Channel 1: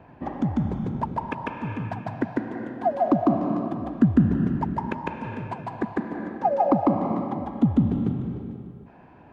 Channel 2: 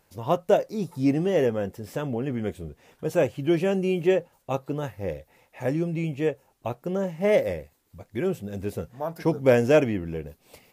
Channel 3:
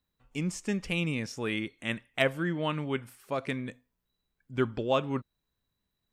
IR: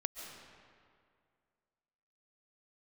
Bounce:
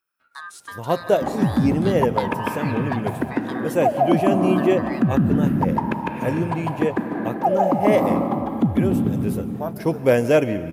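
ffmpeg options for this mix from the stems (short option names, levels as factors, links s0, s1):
-filter_complex "[0:a]alimiter=limit=0.178:level=0:latency=1:release=176,adelay=1000,volume=1.19,asplit=2[s0][s1];[s1]volume=0.708[s2];[1:a]adelay=600,volume=0.944,asplit=2[s3][s4];[s4]volume=0.398[s5];[2:a]acontrast=30,aeval=exprs='val(0)*sin(2*PI*1400*n/s)':c=same,acompressor=threshold=0.0355:ratio=6,volume=0.631[s6];[3:a]atrim=start_sample=2205[s7];[s2][s5]amix=inputs=2:normalize=0[s8];[s8][s7]afir=irnorm=-1:irlink=0[s9];[s0][s3][s6][s9]amix=inputs=4:normalize=0,highpass=79,aexciter=amount=2:drive=5.4:freq=9200"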